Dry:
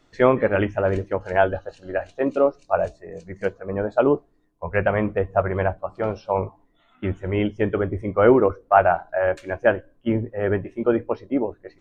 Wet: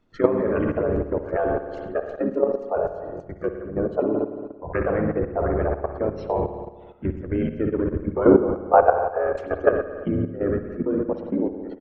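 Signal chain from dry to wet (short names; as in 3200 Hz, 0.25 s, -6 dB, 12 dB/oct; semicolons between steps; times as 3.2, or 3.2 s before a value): formant sharpening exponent 1.5; harmoniser -5 st -2 dB; on a send: echo 0.101 s -17.5 dB; on the sum: spring tank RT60 1.4 s, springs 56 ms, chirp 35 ms, DRR 4.5 dB; level quantiser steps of 11 dB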